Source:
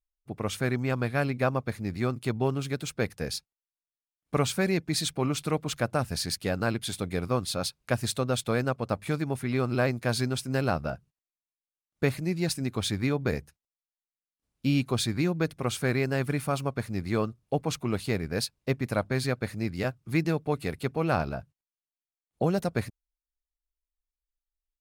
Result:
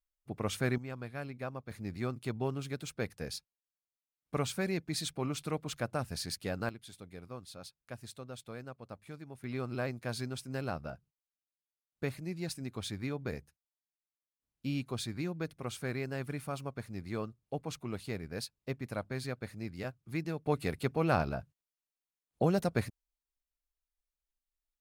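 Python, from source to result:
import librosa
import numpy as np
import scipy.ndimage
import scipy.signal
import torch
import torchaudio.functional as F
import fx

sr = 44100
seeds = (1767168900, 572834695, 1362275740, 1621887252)

y = fx.gain(x, sr, db=fx.steps((0.0, -3.5), (0.78, -14.0), (1.71, -7.5), (6.69, -18.0), (9.44, -10.0), (20.46, -2.5)))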